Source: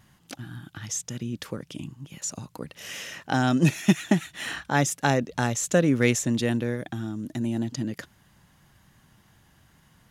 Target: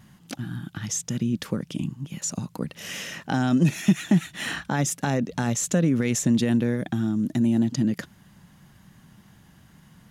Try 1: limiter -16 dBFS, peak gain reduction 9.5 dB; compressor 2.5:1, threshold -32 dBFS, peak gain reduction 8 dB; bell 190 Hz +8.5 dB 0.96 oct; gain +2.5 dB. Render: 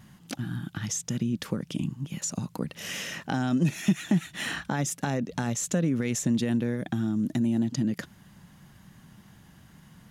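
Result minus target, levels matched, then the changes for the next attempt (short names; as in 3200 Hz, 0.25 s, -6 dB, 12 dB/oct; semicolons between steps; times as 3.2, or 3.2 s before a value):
compressor: peak gain reduction +4.5 dB
change: compressor 2.5:1, threshold -24.5 dBFS, peak gain reduction 3.5 dB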